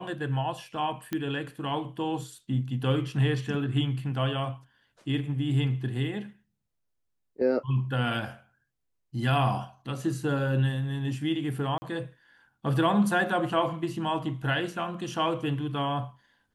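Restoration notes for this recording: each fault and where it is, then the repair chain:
0:01.13: click −17 dBFS
0:11.78–0:11.82: drop-out 40 ms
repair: click removal
repair the gap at 0:11.78, 40 ms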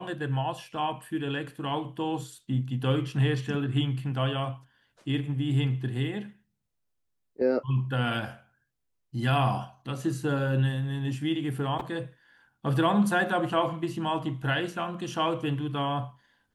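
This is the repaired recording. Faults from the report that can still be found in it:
none of them is left

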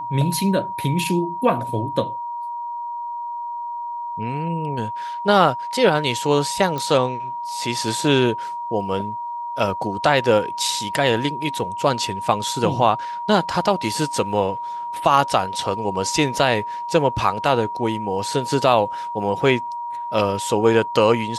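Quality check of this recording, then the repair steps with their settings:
whistle 950 Hz −26 dBFS
0:06.78: click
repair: click removal
notch filter 950 Hz, Q 30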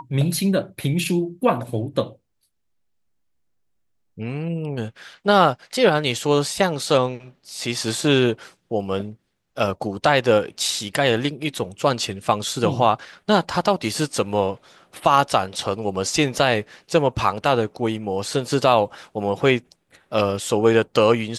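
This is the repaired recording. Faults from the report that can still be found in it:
none of them is left

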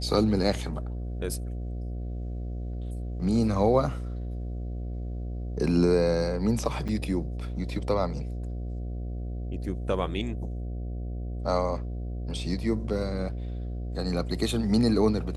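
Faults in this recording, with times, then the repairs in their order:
mains buzz 60 Hz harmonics 12 −33 dBFS
0:06.88–0:06.89: drop-out 6.6 ms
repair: hum removal 60 Hz, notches 12
repair the gap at 0:06.88, 6.6 ms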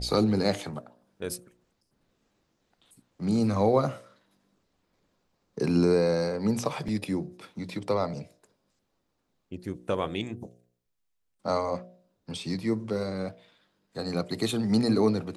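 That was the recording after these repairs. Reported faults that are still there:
none of them is left

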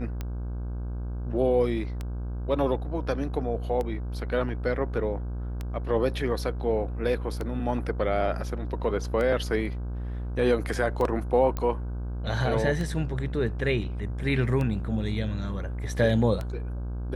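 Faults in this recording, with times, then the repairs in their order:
mains buzz 60 Hz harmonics 27 −32 dBFS
scratch tick 33 1/3 rpm −19 dBFS
0:11.57: click −17 dBFS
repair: click removal
hum removal 60 Hz, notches 27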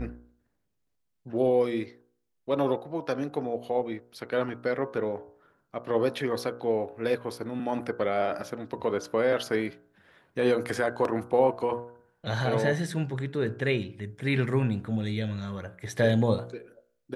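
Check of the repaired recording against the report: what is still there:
none of them is left

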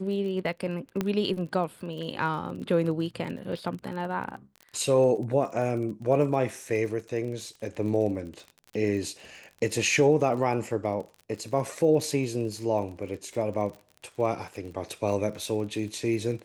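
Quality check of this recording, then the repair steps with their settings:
surface crackle 33 per second −36 dBFS
0:01.01: click −14 dBFS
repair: click removal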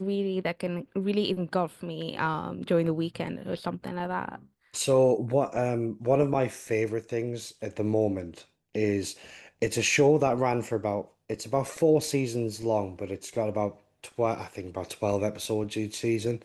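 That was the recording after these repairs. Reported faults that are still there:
none of them is left

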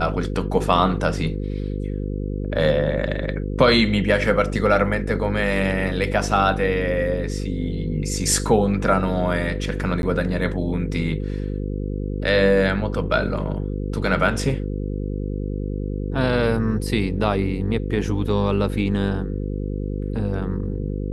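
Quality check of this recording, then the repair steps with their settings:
mains buzz 50 Hz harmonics 10 −26 dBFS
0:10.02–0:10.03: drop-out 11 ms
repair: hum removal 50 Hz, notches 10
repair the gap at 0:10.02, 11 ms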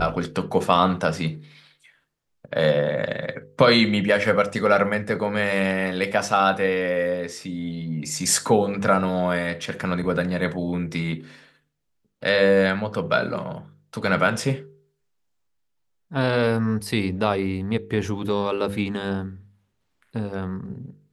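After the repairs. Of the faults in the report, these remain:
none of them is left

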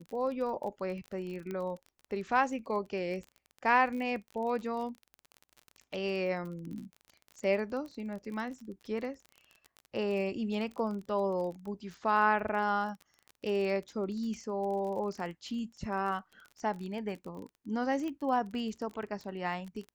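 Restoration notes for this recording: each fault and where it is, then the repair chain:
surface crackle 30 per second −39 dBFS
0:01.51: click −26 dBFS
0:18.08: click −27 dBFS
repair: click removal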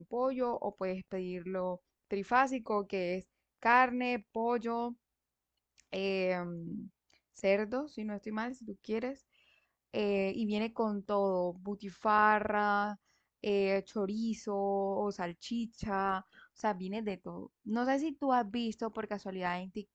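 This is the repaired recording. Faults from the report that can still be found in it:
0:01.51: click

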